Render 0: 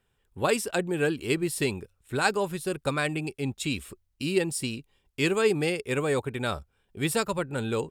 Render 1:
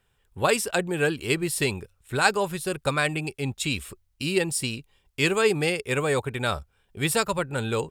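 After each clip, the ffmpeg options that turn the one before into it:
-af "equalizer=f=280:w=0.97:g=-5.5,volume=4.5dB"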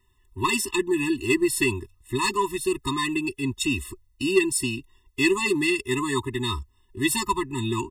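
-af "aecho=1:1:3:0.88,asoftclip=type=tanh:threshold=-11dB,afftfilt=real='re*eq(mod(floor(b*sr/1024/420),2),0)':imag='im*eq(mod(floor(b*sr/1024/420),2),0)':win_size=1024:overlap=0.75,volume=2.5dB"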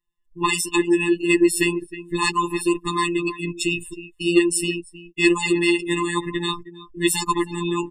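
-filter_complex "[0:a]asplit=2[a][b];[b]adelay=314.9,volume=-13dB,highshelf=f=4k:g=-7.08[c];[a][c]amix=inputs=2:normalize=0,afftfilt=real='hypot(re,im)*cos(PI*b)':imag='0':win_size=1024:overlap=0.75,afftdn=nr=22:nf=-39,volume=6.5dB"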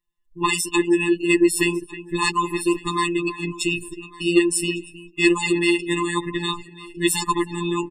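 -af "aecho=1:1:1154|2308:0.0794|0.0143"

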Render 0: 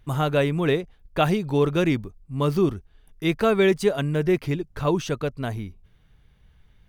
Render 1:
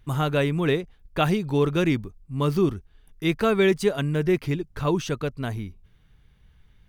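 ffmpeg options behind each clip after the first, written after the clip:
-af "equalizer=f=630:w=1.6:g=-3.5"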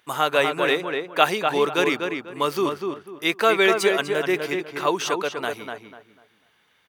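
-filter_complex "[0:a]highpass=570,asplit=2[a][b];[b]adelay=247,lowpass=f=2.5k:p=1,volume=-4.5dB,asplit=2[c][d];[d]adelay=247,lowpass=f=2.5k:p=1,volume=0.28,asplit=2[e][f];[f]adelay=247,lowpass=f=2.5k:p=1,volume=0.28,asplit=2[g][h];[h]adelay=247,lowpass=f=2.5k:p=1,volume=0.28[i];[c][e][g][i]amix=inputs=4:normalize=0[j];[a][j]amix=inputs=2:normalize=0,volume=7dB"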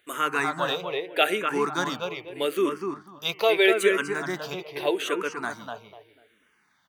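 -filter_complex "[0:a]bandreject=f=155.1:t=h:w=4,bandreject=f=310.2:t=h:w=4,bandreject=f=465.3:t=h:w=4,bandreject=f=620.4:t=h:w=4,bandreject=f=775.5:t=h:w=4,bandreject=f=930.6:t=h:w=4,bandreject=f=1.0857k:t=h:w=4,bandreject=f=1.2408k:t=h:w=4,bandreject=f=1.3959k:t=h:w=4,bandreject=f=1.551k:t=h:w=4,bandreject=f=1.7061k:t=h:w=4,bandreject=f=1.8612k:t=h:w=4,bandreject=f=2.0163k:t=h:w=4,bandreject=f=2.1714k:t=h:w=4,bandreject=f=2.3265k:t=h:w=4,bandreject=f=2.4816k:t=h:w=4,bandreject=f=2.6367k:t=h:w=4,bandreject=f=2.7918k:t=h:w=4,bandreject=f=2.9469k:t=h:w=4,bandreject=f=3.102k:t=h:w=4,asplit=2[a][b];[b]afreqshift=-0.8[c];[a][c]amix=inputs=2:normalize=1"

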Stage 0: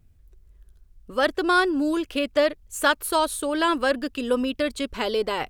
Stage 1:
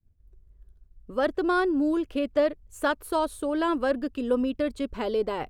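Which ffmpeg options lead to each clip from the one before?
-af "agate=range=-33dB:threshold=-48dB:ratio=3:detection=peak,tiltshelf=f=1.3k:g=6.5,volume=-6.5dB"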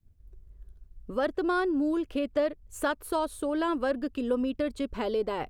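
-af "acompressor=threshold=-41dB:ratio=1.5,volume=4dB"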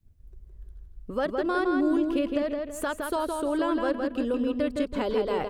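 -filter_complex "[0:a]alimiter=limit=-20dB:level=0:latency=1:release=362,asplit=2[a][b];[b]adelay=164,lowpass=f=4.1k:p=1,volume=-3.5dB,asplit=2[c][d];[d]adelay=164,lowpass=f=4.1k:p=1,volume=0.36,asplit=2[e][f];[f]adelay=164,lowpass=f=4.1k:p=1,volume=0.36,asplit=2[g][h];[h]adelay=164,lowpass=f=4.1k:p=1,volume=0.36,asplit=2[i][j];[j]adelay=164,lowpass=f=4.1k:p=1,volume=0.36[k];[c][e][g][i][k]amix=inputs=5:normalize=0[l];[a][l]amix=inputs=2:normalize=0,volume=2dB"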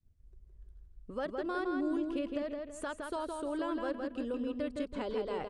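-af "aresample=22050,aresample=44100,volume=-9dB"

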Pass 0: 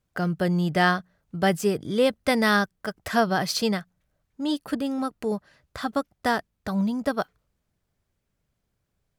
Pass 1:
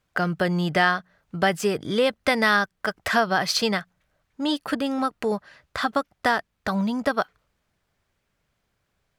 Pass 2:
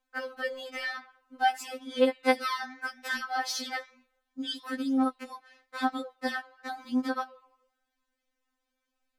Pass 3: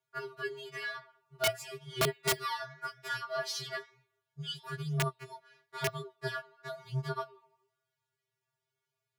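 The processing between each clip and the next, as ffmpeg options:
-af "equalizer=f=1.8k:w=0.3:g=9.5,acompressor=threshold=-21dB:ratio=2"
-af "flanger=delay=9.8:depth=6.8:regen=-89:speed=1:shape=triangular,afftfilt=real='re*3.46*eq(mod(b,12),0)':imag='im*3.46*eq(mod(b,12),0)':win_size=2048:overlap=0.75,volume=-1dB"
-af "aeval=exprs='(mod(7.08*val(0)+1,2)-1)/7.08':c=same,lowshelf=f=140:g=-10.5,afreqshift=-120,volume=-4dB"

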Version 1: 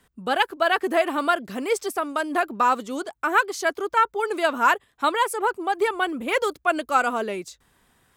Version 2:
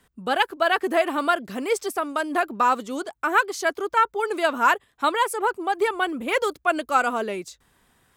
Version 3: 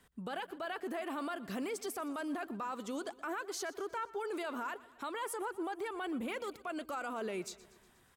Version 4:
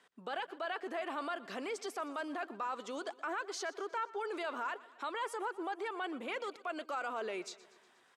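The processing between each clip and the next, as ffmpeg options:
-af anull
-af "acompressor=threshold=-25dB:ratio=6,alimiter=level_in=3dB:limit=-24dB:level=0:latency=1:release=15,volume=-3dB,aecho=1:1:120|240|360|480|600:0.112|0.0651|0.0377|0.0219|0.0127,volume=-4.5dB"
-af "highpass=410,lowpass=6k,volume=2dB"

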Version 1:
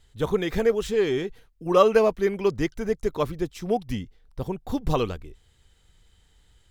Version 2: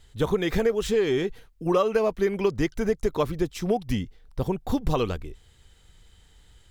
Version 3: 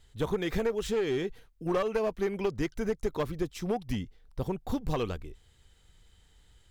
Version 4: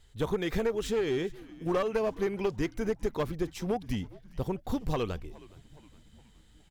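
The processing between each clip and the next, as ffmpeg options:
-af "acompressor=threshold=-24dB:ratio=5,volume=4.5dB"
-af "aeval=exprs='clip(val(0),-1,0.0944)':c=same,volume=-5.5dB"
-filter_complex "[0:a]asplit=5[a][b][c][d][e];[b]adelay=416,afreqshift=-82,volume=-21dB[f];[c]adelay=832,afreqshift=-164,volume=-26dB[g];[d]adelay=1248,afreqshift=-246,volume=-31.1dB[h];[e]adelay=1664,afreqshift=-328,volume=-36.1dB[i];[a][f][g][h][i]amix=inputs=5:normalize=0"

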